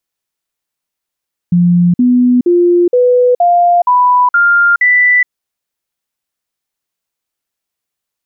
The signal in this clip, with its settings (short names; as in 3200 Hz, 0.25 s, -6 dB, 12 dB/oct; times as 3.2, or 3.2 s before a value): stepped sine 175 Hz up, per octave 2, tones 8, 0.42 s, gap 0.05 s -5.5 dBFS